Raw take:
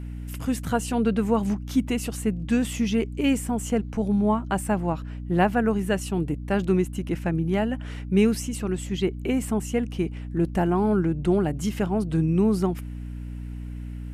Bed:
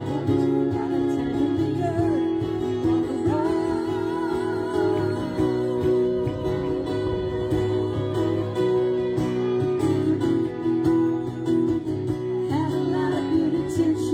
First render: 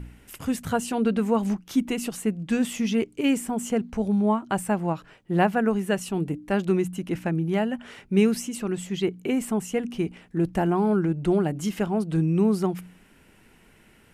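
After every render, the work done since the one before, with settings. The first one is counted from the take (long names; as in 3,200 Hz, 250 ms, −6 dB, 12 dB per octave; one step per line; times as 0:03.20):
hum removal 60 Hz, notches 5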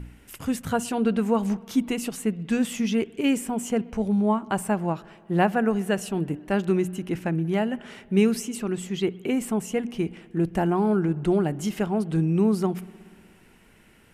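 spring reverb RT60 2.1 s, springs 60 ms, chirp 75 ms, DRR 20 dB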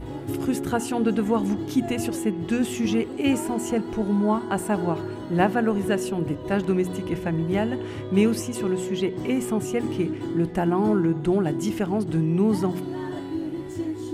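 mix in bed −8 dB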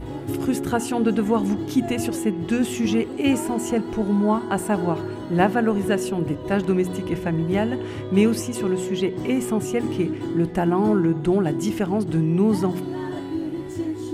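level +2 dB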